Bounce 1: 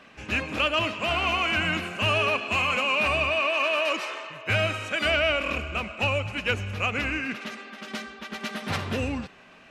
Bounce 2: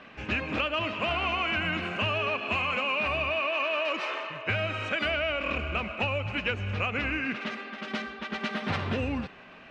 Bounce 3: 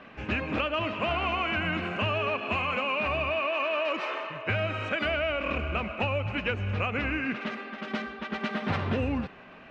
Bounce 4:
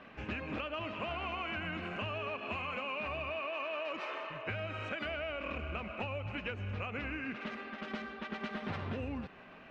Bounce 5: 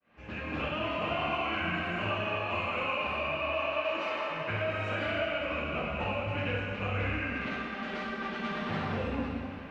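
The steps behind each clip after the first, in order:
LPF 3700 Hz 12 dB/oct; compressor, threshold -28 dBFS, peak gain reduction 8.5 dB; gain +2.5 dB
high shelf 2600 Hz -8 dB; gain +2 dB
AM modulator 160 Hz, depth 15%; compressor 2.5:1, threshold -34 dBFS, peak gain reduction 6.5 dB; gain -3.5 dB
opening faded in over 0.55 s; plate-style reverb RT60 2 s, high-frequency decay 0.9×, DRR -6 dB

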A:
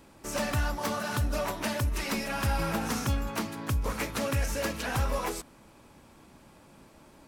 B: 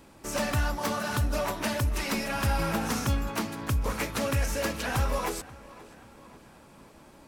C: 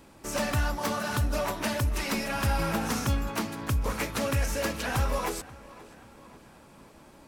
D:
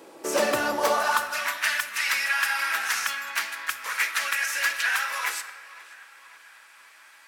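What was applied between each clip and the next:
tape echo 0.534 s, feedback 58%, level -17.5 dB, low-pass 3400 Hz; gain +1.5 dB
nothing audible
high-pass sweep 410 Hz -> 1700 Hz, 0.74–1.37; shoebox room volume 1500 m³, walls mixed, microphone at 0.66 m; gain +4.5 dB

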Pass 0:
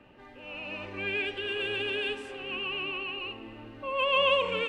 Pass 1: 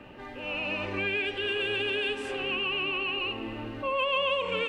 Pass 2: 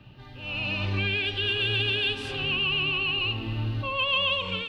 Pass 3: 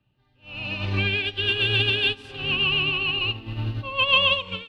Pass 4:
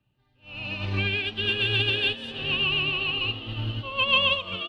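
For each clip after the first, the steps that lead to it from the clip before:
compressor 3:1, threshold -37 dBFS, peak gain reduction 12.5 dB; attack slew limiter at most 190 dB/s; gain +8.5 dB
graphic EQ 125/250/500/1000/2000/4000/8000 Hz +11/-7/-12/-5/-10/+8/-11 dB; AGC gain up to 8 dB
upward expander 2.5:1, over -42 dBFS; gain +8 dB
frequency-shifting echo 0.482 s, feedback 52%, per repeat +120 Hz, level -14 dB; gain -2.5 dB

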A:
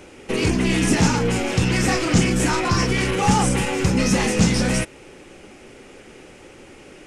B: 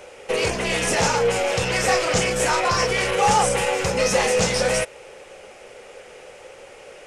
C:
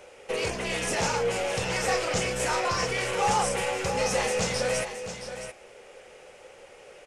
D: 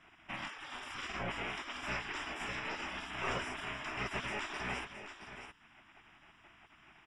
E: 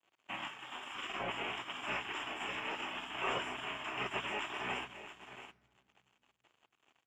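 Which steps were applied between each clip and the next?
resonant low shelf 390 Hz -9 dB, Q 3; gain +1 dB
echo 0.669 s -10 dB; gain -7 dB
spectral gate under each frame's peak -15 dB weak; polynomial smoothing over 25 samples; gain -3 dB
crossover distortion -57 dBFS; reverb RT60 2.1 s, pre-delay 3 ms, DRR 17 dB; gain -6.5 dB

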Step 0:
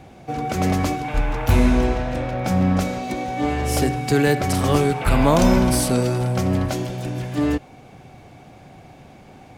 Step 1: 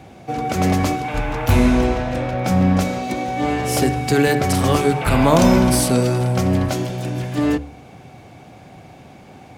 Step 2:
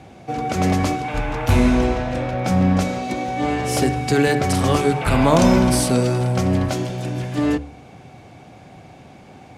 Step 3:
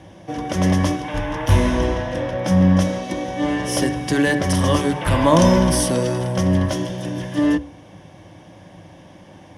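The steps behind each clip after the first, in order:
HPF 57 Hz; de-hum 72.08 Hz, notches 28; gain +3 dB
LPF 11000 Hz 12 dB/oct; gain -1 dB
ripple EQ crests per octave 1.2, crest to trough 10 dB; gain -1 dB

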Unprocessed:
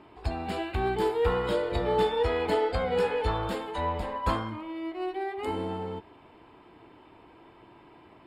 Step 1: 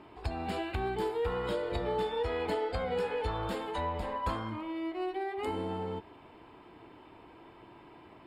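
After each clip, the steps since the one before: compressor 2.5:1, threshold -32 dBFS, peak gain reduction 8.5 dB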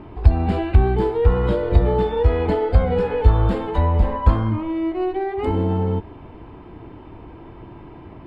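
RIAA curve playback; gain +8.5 dB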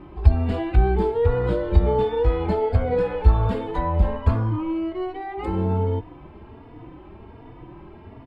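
endless flanger 3.5 ms +1.3 Hz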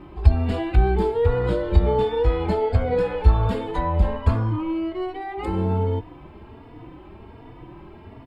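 high shelf 3600 Hz +7.5 dB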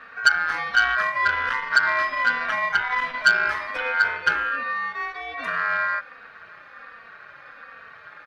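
ring modulator 1500 Hz; core saturation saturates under 2800 Hz; gain +1 dB

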